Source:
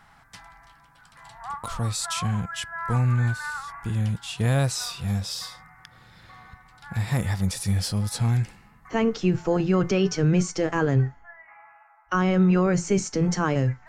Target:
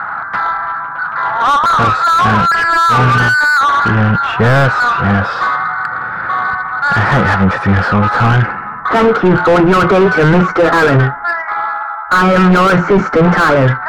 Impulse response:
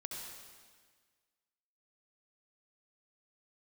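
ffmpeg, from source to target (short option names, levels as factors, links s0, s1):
-filter_complex "[0:a]lowpass=f=1400:t=q:w=5.1,asplit=2[s0][s1];[s1]highpass=f=720:p=1,volume=56.2,asoftclip=type=tanh:threshold=0.668[s2];[s0][s2]amix=inputs=2:normalize=0,lowpass=f=1100:p=1,volume=0.501,volume=1.5"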